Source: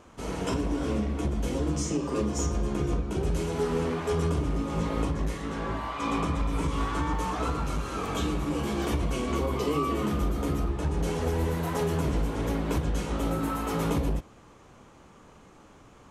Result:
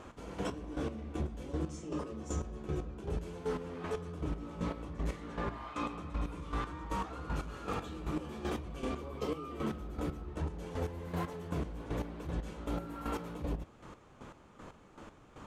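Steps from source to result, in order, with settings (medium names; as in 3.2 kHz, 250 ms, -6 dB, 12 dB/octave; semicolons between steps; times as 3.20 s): treble shelf 6.1 kHz -8.5 dB; reverse; compression 6:1, threshold -35 dBFS, peak gain reduction 12 dB; reverse; square tremolo 2.5 Hz, depth 65%, duty 30%; speed mistake 24 fps film run at 25 fps; trim +3.5 dB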